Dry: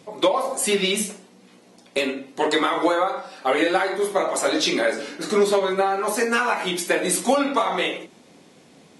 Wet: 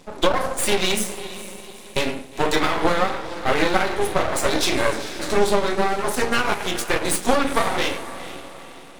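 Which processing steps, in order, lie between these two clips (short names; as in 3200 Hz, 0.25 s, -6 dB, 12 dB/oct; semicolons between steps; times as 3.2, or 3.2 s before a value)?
5.74–7.23 transient shaper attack -2 dB, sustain -7 dB; diffused feedback echo 0.459 s, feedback 46%, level -13 dB; half-wave rectifier; gain +4.5 dB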